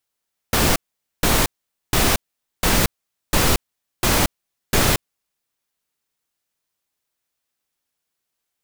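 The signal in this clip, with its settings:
noise bursts pink, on 0.23 s, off 0.47 s, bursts 7, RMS −16.5 dBFS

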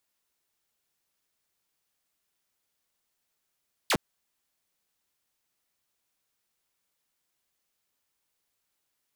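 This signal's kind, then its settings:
single falling chirp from 5,300 Hz, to 120 Hz, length 0.06 s saw, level −19 dB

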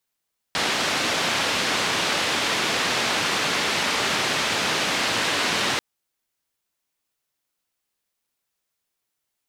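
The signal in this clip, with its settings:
band-limited noise 130–3,800 Hz, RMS −23.5 dBFS 5.24 s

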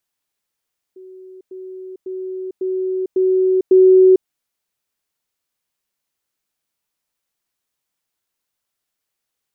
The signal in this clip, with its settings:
level staircase 374 Hz −36 dBFS, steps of 6 dB, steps 6, 0.45 s 0.10 s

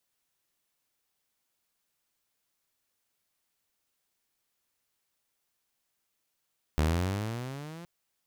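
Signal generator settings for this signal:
pitch glide with a swell saw, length 1.07 s, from 74 Hz, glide +15 semitones, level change −20 dB, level −20 dB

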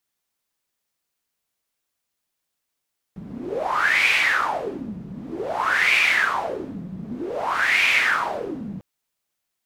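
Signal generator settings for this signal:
wind from filtered noise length 5.65 s, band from 180 Hz, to 2,400 Hz, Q 7.3, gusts 3, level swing 16 dB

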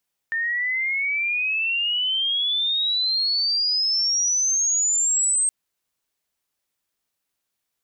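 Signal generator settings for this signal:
glide logarithmic 1,800 Hz → 8,400 Hz −21.5 dBFS → −17.5 dBFS 5.17 s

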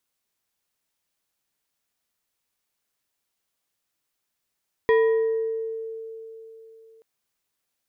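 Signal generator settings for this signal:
two-operator FM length 2.13 s, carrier 448 Hz, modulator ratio 3.2, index 0.65, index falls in 1.44 s exponential, decay 3.50 s, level −14 dB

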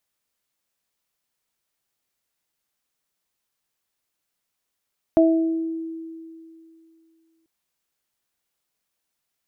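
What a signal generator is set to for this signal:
harmonic partials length 2.29 s, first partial 326 Hz, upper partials 0 dB, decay 2.63 s, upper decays 0.69 s, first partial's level −13 dB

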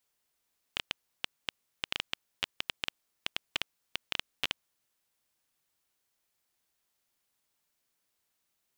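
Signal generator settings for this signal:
Geiger counter clicks 7.4 per second −11.5 dBFS 3.95 s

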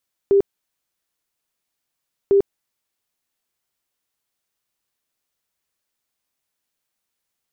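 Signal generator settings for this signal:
tone bursts 397 Hz, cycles 38, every 2.00 s, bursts 2, −10.5 dBFS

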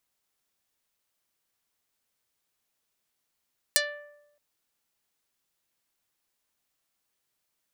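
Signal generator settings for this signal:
Karplus-Strong string D5, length 0.62 s, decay 0.95 s, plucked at 0.47, dark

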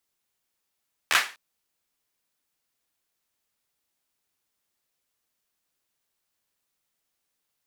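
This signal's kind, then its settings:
synth clap length 0.25 s, apart 13 ms, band 1,800 Hz, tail 0.33 s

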